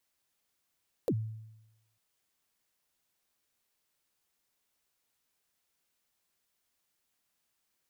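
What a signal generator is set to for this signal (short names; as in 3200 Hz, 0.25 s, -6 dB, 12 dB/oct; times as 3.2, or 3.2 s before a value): kick drum length 0.90 s, from 570 Hz, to 110 Hz, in 60 ms, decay 0.95 s, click on, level -24 dB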